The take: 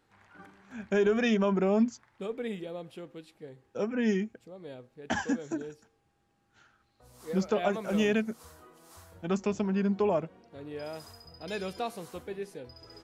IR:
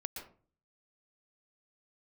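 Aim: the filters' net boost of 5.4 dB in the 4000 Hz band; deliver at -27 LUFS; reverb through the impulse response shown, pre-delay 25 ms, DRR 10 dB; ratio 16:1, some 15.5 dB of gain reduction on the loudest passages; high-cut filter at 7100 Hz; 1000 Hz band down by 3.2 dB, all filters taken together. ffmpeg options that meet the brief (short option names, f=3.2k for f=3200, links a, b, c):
-filter_complex "[0:a]lowpass=7.1k,equalizer=f=1k:t=o:g=-5,equalizer=f=4k:t=o:g=8,acompressor=threshold=-37dB:ratio=16,asplit=2[a][b];[1:a]atrim=start_sample=2205,adelay=25[c];[b][c]afir=irnorm=-1:irlink=0,volume=-9dB[d];[a][d]amix=inputs=2:normalize=0,volume=15.5dB"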